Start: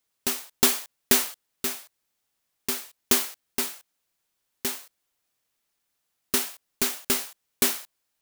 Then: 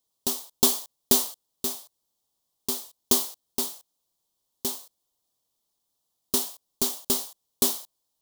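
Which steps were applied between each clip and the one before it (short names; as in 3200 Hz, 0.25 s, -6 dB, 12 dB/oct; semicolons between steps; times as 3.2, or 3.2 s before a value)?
band shelf 1900 Hz -14.5 dB 1.2 oct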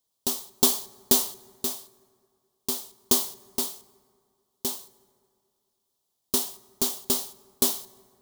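reverb RT60 2.3 s, pre-delay 4 ms, DRR 18 dB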